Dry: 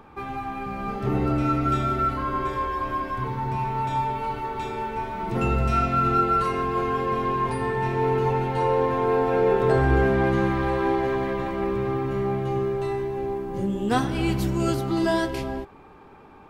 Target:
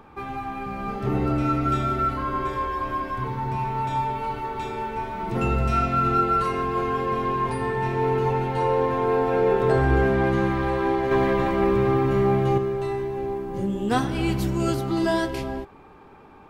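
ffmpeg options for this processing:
-filter_complex "[0:a]asettb=1/sr,asplit=3[s0][s1][s2];[s0]atrim=end=11.114[s3];[s1]atrim=start=11.11:end=12.58,asetpts=PTS-STARTPTS,afade=t=in:d=0.004:c=qsin,afade=t=out:st=1.466:d=0.004:c=qsin,acontrast=35[s4];[s2]atrim=start=12.576[s5];[s3][s4]acrossfade=d=0.004:c1=hsin:c2=qsin[s6];[s6][s5]acrossfade=d=0.004:c1=qsin:c2=hsin"

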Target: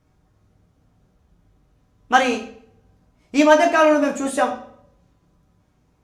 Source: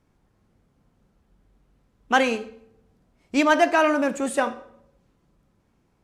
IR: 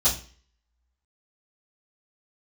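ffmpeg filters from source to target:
-filter_complex "[0:a]asplit=2[s0][s1];[s1]lowshelf=f=63:g=-11[s2];[1:a]atrim=start_sample=2205[s3];[s2][s3]afir=irnorm=-1:irlink=0,volume=0.188[s4];[s0][s4]amix=inputs=2:normalize=0,volume=1.19"

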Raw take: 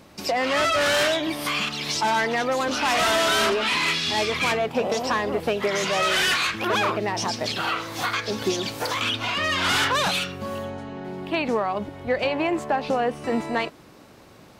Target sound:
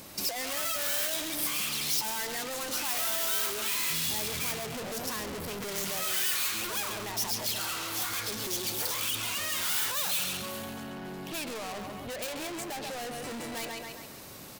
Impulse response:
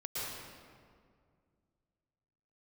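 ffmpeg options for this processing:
-filter_complex "[0:a]asettb=1/sr,asplit=3[s0][s1][s2];[s0]atrim=end=3.904[s3];[s1]atrim=start=3.9:end=6.04,asetpts=PTS-STARTPTS,afade=t=in:d=0.004:c=qsin,afade=t=out:st=2.136:d=0.004:c=qsin,equalizer=f=110:w=0.43:g=12.5[s4];[s2]atrim=start=6.036[s5];[s3][s4]acrossfade=d=0.004:c1=hsin:c2=qsin[s6];[s6][s5]acrossfade=d=0.004:c1=qsin:c2=hsin,asoftclip=type=hard:threshold=0.0841,aecho=1:1:136|272|408|544|680:0.398|0.163|0.0669|0.0274|0.0112,asoftclip=type=tanh:threshold=0.0224,acompressor=threshold=0.0141:ratio=6,aemphasis=mode=production:type=75fm"

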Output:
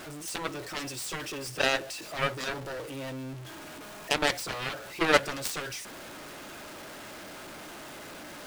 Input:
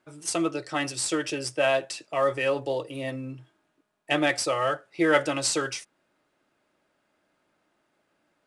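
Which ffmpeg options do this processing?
-af "aeval=exprs='val(0)+0.5*0.0251*sgn(val(0))':c=same,aeval=exprs='0.447*(cos(1*acos(clip(val(0)/0.447,-1,1)))-cos(1*PI/2))+0.0178*(cos(3*acos(clip(val(0)/0.447,-1,1)))-cos(3*PI/2))+0.0891*(cos(7*acos(clip(val(0)/0.447,-1,1)))-cos(7*PI/2))':c=same"

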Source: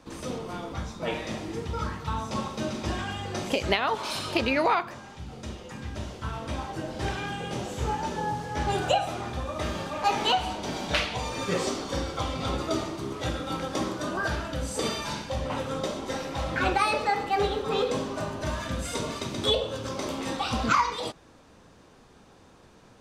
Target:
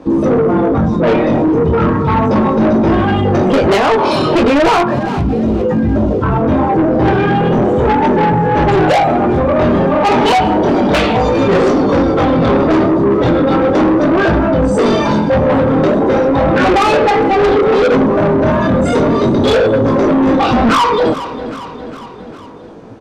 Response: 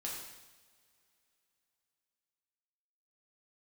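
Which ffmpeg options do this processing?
-af "afftdn=nr=15:nf=-37,lowpass=f=3300:p=1,equalizer=f=330:t=o:w=3:g=14,acontrast=44,flanger=delay=18:depth=7.5:speed=0.35,asoftclip=type=tanh:threshold=0.106,aecho=1:1:406|812|1218|1624:0.0708|0.0418|0.0246|0.0145,alimiter=level_in=25.1:limit=0.891:release=50:level=0:latency=1,volume=0.473"

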